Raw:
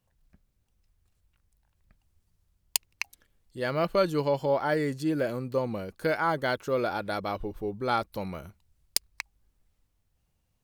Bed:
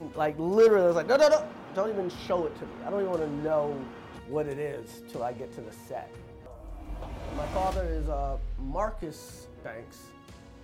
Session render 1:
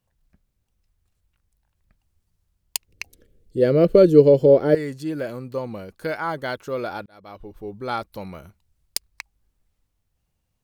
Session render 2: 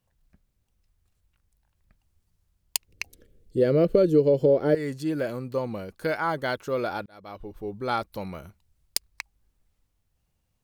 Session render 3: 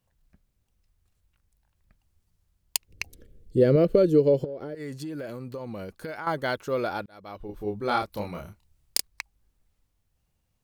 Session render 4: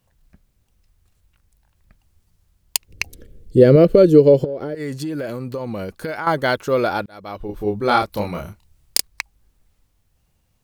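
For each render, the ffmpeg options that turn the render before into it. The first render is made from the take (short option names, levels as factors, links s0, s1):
-filter_complex "[0:a]asettb=1/sr,asplit=3[s0][s1][s2];[s0]atrim=end=2.884[s3];[s1]atrim=start=2.88:end=4.75,asetpts=PTS-STARTPTS,afade=t=in:d=0.004:c=qsin,afade=t=out:st=1.866:d=0.004:c=qsin,lowshelf=f=640:t=q:w=3:g=11[s4];[s2]atrim=start=4.746[s5];[s3][s4]acrossfade=d=0.004:c1=hsin:c2=qsin[s6];[s6][s5]acrossfade=d=0.004:c1=qsin:c2=hsin,asplit=2[s7][s8];[s7]atrim=end=7.06,asetpts=PTS-STARTPTS,afade=t=out:st=7.056:d=0.004:c=hsin[s9];[s8]atrim=start=7.06,asetpts=PTS-STARTPTS,afade=t=in:d=0.7[s10];[s9][s10]concat=n=2:v=0:a=1"
-af "acompressor=threshold=0.126:ratio=3"
-filter_complex "[0:a]asettb=1/sr,asplit=3[s0][s1][s2];[s0]atrim=end=2.904[s3];[s1]atrim=start=2.9:end=3.76,asetpts=PTS-STARTPTS,afade=t=in:d=0.004:c=qsin,afade=t=out:st=0.856:d=0.004:c=qsin,lowshelf=f=270:g=6.5[s4];[s2]atrim=start=3.756[s5];[s3][s4]acrossfade=d=0.004:c1=hsin:c2=qsin[s6];[s6][s5]acrossfade=d=0.004:c1=qsin:c2=hsin,asettb=1/sr,asplit=3[s7][s8][s9];[s7]atrim=end=4.444[s10];[s8]atrim=start=4.44:end=6.27,asetpts=PTS-STARTPTS,afade=t=in:d=0.004:c=qsin,afade=t=out:st=1.826:d=0.004:c=qsin,acompressor=threshold=0.0282:ratio=20:attack=3.2:release=140:knee=1:detection=peak[s11];[s9]atrim=start=6.266[s12];[s10][s11]acrossfade=d=0.004:c1=hsin:c2=qsin[s13];[s13][s12]acrossfade=d=0.004:c1=qsin:c2=hsin,asettb=1/sr,asplit=3[s14][s15][s16];[s14]atrim=end=7.464[s17];[s15]atrim=start=7.46:end=9.07,asetpts=PTS-STARTPTS,afade=t=in:d=0.004:c=qsin,afade=t=out:st=1.606:d=0.004:c=qsin,asplit=2[s18][s19];[s19]adelay=29,volume=0.708[s20];[s18][s20]amix=inputs=2:normalize=0,atrim=end_sample=71001[s21];[s16]atrim=start=9.066[s22];[s17][s21]acrossfade=d=0.004:c1=hsin:c2=qsin[s23];[s23][s22]acrossfade=d=0.004:c1=qsin:c2=hsin"
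-af "volume=2.82,alimiter=limit=0.891:level=0:latency=1"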